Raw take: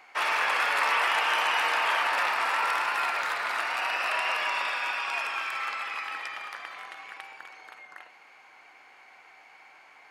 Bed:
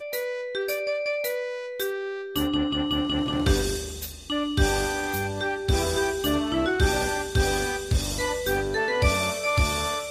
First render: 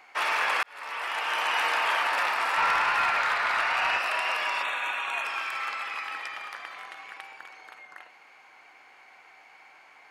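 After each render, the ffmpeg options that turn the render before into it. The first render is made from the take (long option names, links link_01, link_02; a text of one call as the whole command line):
ffmpeg -i in.wav -filter_complex "[0:a]asettb=1/sr,asplit=3[link_01][link_02][link_03];[link_01]atrim=end=2.574[link_04];[link_02]atrim=start=2.57:end=3.99,asetpts=PTS-STARTPTS,afade=type=in:duration=0.004:curve=qsin,afade=type=out:start_time=1.416:duration=0.004:curve=qsin,asplit=2[link_05][link_06];[link_06]highpass=frequency=720:poles=1,volume=11dB,asoftclip=type=tanh:threshold=-14dB[link_07];[link_05][link_07]amix=inputs=2:normalize=0,lowpass=frequency=3200:poles=1,volume=-6dB[link_08];[link_03]atrim=start=3.986[link_09];[link_04][link_08]acrossfade=duration=0.004:curve1=hsin:curve2=qsin[link_10];[link_10][link_09]acrossfade=duration=0.004:curve1=qsin:curve2=hsin,asplit=3[link_11][link_12][link_13];[link_11]afade=type=out:start_time=4.62:duration=0.02[link_14];[link_12]asuperstop=centerf=5000:order=8:qfactor=3.2,afade=type=in:start_time=4.62:duration=0.02,afade=type=out:start_time=5.24:duration=0.02[link_15];[link_13]afade=type=in:start_time=5.24:duration=0.02[link_16];[link_14][link_15][link_16]amix=inputs=3:normalize=0,asplit=2[link_17][link_18];[link_17]atrim=end=0.63,asetpts=PTS-STARTPTS,afade=type=out:start_time=0.626:duration=0.004:curve=hsin[link_19];[link_18]atrim=start=0.63,asetpts=PTS-STARTPTS,afade=type=in:duration=0.98[link_20];[link_19][link_20]concat=n=2:v=0:a=1" out.wav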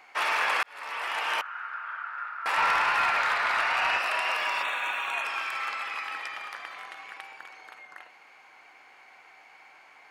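ffmpeg -i in.wav -filter_complex "[0:a]asettb=1/sr,asplit=3[link_01][link_02][link_03];[link_01]atrim=end=1.414[link_04];[link_02]atrim=start=1.41:end=2.46,asetpts=PTS-STARTPTS,afade=type=in:duration=0.004:curve=qsin,afade=type=out:start_time=1.046:duration=0.004:curve=qsin,bandpass=frequency=1400:width_type=q:width=11[link_05];[link_03]atrim=start=2.456[link_06];[link_04][link_05]acrossfade=duration=0.004:curve1=hsin:curve2=qsin[link_07];[link_07][link_06]acrossfade=duration=0.004:curve1=qsin:curve2=hsin,asettb=1/sr,asplit=3[link_08][link_09][link_10];[link_08]atrim=end=4.304[link_11];[link_09]atrim=start=4.3:end=5.15,asetpts=PTS-STARTPTS,afade=type=in:duration=0.004:curve=qsin,afade=type=out:start_time=0.846:duration=0.004:curve=qsin,aeval=exprs='val(0)*gte(abs(val(0)),0.00376)':channel_layout=same[link_12];[link_10]atrim=start=5.146[link_13];[link_11][link_12]acrossfade=duration=0.004:curve1=hsin:curve2=qsin[link_14];[link_14][link_13]acrossfade=duration=0.004:curve1=qsin:curve2=hsin" out.wav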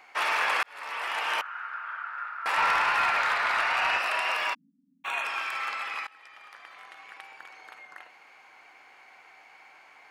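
ffmpeg -i in.wav -filter_complex "[0:a]asplit=3[link_01][link_02][link_03];[link_01]afade=type=out:start_time=4.53:duration=0.02[link_04];[link_02]asuperpass=centerf=210:order=20:qfactor=1.6,afade=type=in:start_time=4.53:duration=0.02,afade=type=out:start_time=5.04:duration=0.02[link_05];[link_03]afade=type=in:start_time=5.04:duration=0.02[link_06];[link_04][link_05][link_06]amix=inputs=3:normalize=0,asplit=2[link_07][link_08];[link_07]atrim=end=6.07,asetpts=PTS-STARTPTS,afade=type=out:start_time=6.066:duration=0.004:curve=hsin:silence=0.0794328[link_09];[link_08]atrim=start=6.07,asetpts=PTS-STARTPTS,afade=type=in:duration=1.66:silence=0.0794328[link_10];[link_09][link_10]concat=n=2:v=0:a=1" out.wav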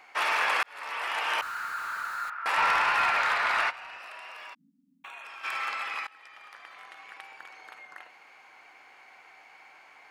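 ffmpeg -i in.wav -filter_complex "[0:a]asettb=1/sr,asplit=3[link_01][link_02][link_03];[link_01]atrim=end=1.424[link_04];[link_02]atrim=start=1.42:end=2.3,asetpts=PTS-STARTPTS,afade=type=in:duration=0.004:curve=qsin,afade=type=out:start_time=0.876:duration=0.004:curve=qsin,aeval=exprs='val(0)+0.5*0.0112*sgn(val(0))':channel_layout=same[link_05];[link_03]atrim=start=2.296[link_06];[link_04][link_05]acrossfade=duration=0.004:curve1=hsin:curve2=qsin[link_07];[link_07][link_06]acrossfade=duration=0.004:curve1=qsin:curve2=hsin,asplit=3[link_08][link_09][link_10];[link_08]afade=type=out:start_time=3.69:duration=0.02[link_11];[link_09]acompressor=threshold=-41dB:ratio=8:attack=3.2:release=140:knee=1:detection=peak,afade=type=in:start_time=3.69:duration=0.02,afade=type=out:start_time=5.43:duration=0.02[link_12];[link_10]afade=type=in:start_time=5.43:duration=0.02[link_13];[link_11][link_12][link_13]amix=inputs=3:normalize=0" out.wav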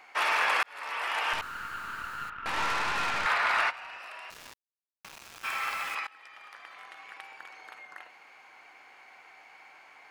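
ffmpeg -i in.wav -filter_complex "[0:a]asettb=1/sr,asplit=3[link_01][link_02][link_03];[link_01]atrim=end=1.334[link_04];[link_02]atrim=start=1.33:end=3.26,asetpts=PTS-STARTPTS,afade=type=in:duration=0.004:curve=qsin,afade=type=out:start_time=1.926:duration=0.004:curve=qsin,aeval=exprs='(tanh(20*val(0)+0.75)-tanh(0.75))/20':channel_layout=same[link_05];[link_03]atrim=start=3.256[link_06];[link_04][link_05]acrossfade=duration=0.004:curve1=hsin:curve2=qsin[link_07];[link_07][link_06]acrossfade=duration=0.004:curve1=qsin:curve2=hsin,asettb=1/sr,asplit=3[link_08][link_09][link_10];[link_08]atrim=end=4.304[link_11];[link_09]atrim=start=4.3:end=5.95,asetpts=PTS-STARTPTS,afade=type=in:duration=0.004:curve=qsin,afade=type=out:start_time=1.646:duration=0.004:curve=qsin,aeval=exprs='val(0)*gte(abs(val(0)),0.0112)':channel_layout=same[link_12];[link_10]atrim=start=5.946[link_13];[link_11][link_12]acrossfade=duration=0.004:curve1=hsin:curve2=qsin[link_14];[link_14][link_13]acrossfade=duration=0.004:curve1=qsin:curve2=hsin" out.wav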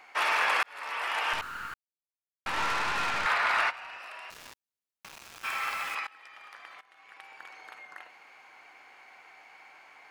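ffmpeg -i in.wav -filter_complex "[0:a]asplit=4[link_01][link_02][link_03][link_04];[link_01]atrim=end=1.74,asetpts=PTS-STARTPTS,afade=type=out:start_time=1.736:duration=0.004:curve=hsin[link_05];[link_02]atrim=start=1.74:end=2.46,asetpts=PTS-STARTPTS,volume=0[link_06];[link_03]atrim=start=2.46:end=6.81,asetpts=PTS-STARTPTS,afade=type=in:duration=0.004:curve=hsin,afade=type=out:start_time=4.346:duration=0.004:curve=hsin:silence=0.112202[link_07];[link_04]atrim=start=6.81,asetpts=PTS-STARTPTS,afade=type=in:duration=0.66:silence=0.112202[link_08];[link_05][link_06][link_07][link_08]concat=n=4:v=0:a=1" out.wav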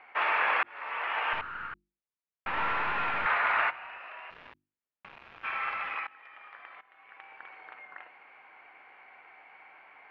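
ffmpeg -i in.wav -af "lowpass=frequency=2700:width=0.5412,lowpass=frequency=2700:width=1.3066,bandreject=frequency=50:width_type=h:width=6,bandreject=frequency=100:width_type=h:width=6,bandreject=frequency=150:width_type=h:width=6,bandreject=frequency=200:width_type=h:width=6,bandreject=frequency=250:width_type=h:width=6,bandreject=frequency=300:width_type=h:width=6,bandreject=frequency=350:width_type=h:width=6" out.wav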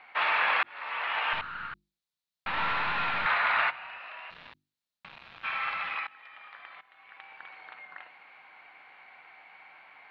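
ffmpeg -i in.wav -af "equalizer=frequency=160:width_type=o:width=0.67:gain=5,equalizer=frequency=400:width_type=o:width=0.67:gain=-5,equalizer=frequency=4000:width_type=o:width=0.67:gain=12" out.wav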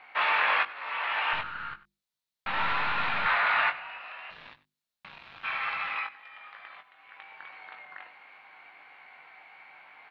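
ffmpeg -i in.wav -filter_complex "[0:a]asplit=2[link_01][link_02];[link_02]adelay=20,volume=-6.5dB[link_03];[link_01][link_03]amix=inputs=2:normalize=0,aecho=1:1:95:0.126" out.wav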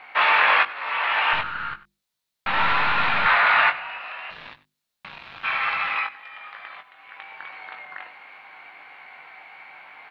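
ffmpeg -i in.wav -af "volume=7.5dB" out.wav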